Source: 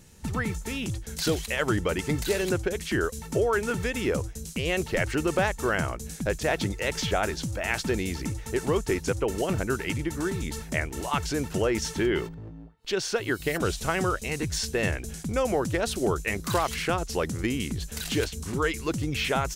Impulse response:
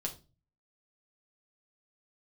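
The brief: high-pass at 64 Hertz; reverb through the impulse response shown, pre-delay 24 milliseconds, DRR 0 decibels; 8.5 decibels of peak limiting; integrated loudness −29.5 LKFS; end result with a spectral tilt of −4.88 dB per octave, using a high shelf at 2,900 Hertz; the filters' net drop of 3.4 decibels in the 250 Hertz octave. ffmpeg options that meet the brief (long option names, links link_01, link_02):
-filter_complex "[0:a]highpass=64,equalizer=frequency=250:width_type=o:gain=-5,highshelf=frequency=2900:gain=-3.5,alimiter=limit=-20dB:level=0:latency=1,asplit=2[link_01][link_02];[1:a]atrim=start_sample=2205,adelay=24[link_03];[link_02][link_03]afir=irnorm=-1:irlink=0,volume=-0.5dB[link_04];[link_01][link_04]amix=inputs=2:normalize=0,volume=-1.5dB"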